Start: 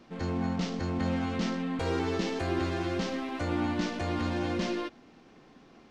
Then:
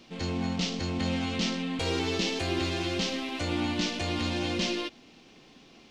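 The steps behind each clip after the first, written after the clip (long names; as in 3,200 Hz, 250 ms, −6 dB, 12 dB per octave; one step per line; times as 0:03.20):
high shelf with overshoot 2,100 Hz +8 dB, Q 1.5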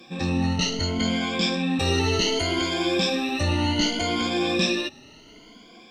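rippled gain that drifts along the octave scale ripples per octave 1.8, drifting +0.67 Hz, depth 21 dB
level +2 dB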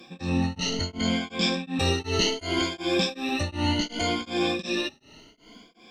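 tremolo along a rectified sine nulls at 2.7 Hz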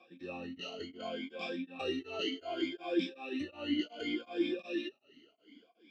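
formant filter swept between two vowels a-i 2.8 Hz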